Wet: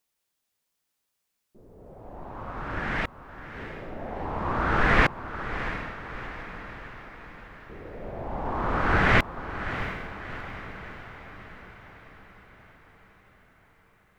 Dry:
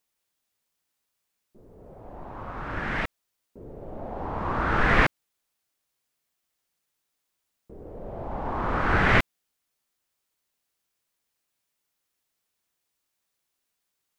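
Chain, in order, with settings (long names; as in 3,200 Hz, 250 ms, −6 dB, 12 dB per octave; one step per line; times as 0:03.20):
feedback delay with all-pass diffusion 690 ms, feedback 56%, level −10.5 dB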